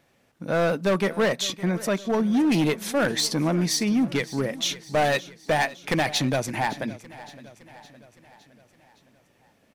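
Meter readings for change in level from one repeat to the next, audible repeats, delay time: −5.0 dB, 4, 563 ms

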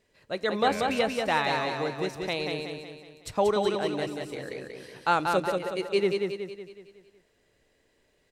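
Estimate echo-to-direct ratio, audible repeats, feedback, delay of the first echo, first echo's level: −3.0 dB, 5, 48%, 185 ms, −4.0 dB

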